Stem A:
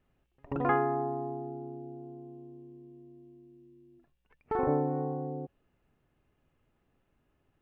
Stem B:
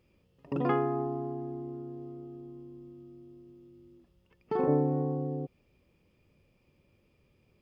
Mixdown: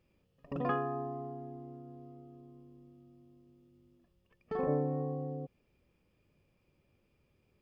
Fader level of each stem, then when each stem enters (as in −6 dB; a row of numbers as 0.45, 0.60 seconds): −8.5, −5.5 decibels; 0.00, 0.00 seconds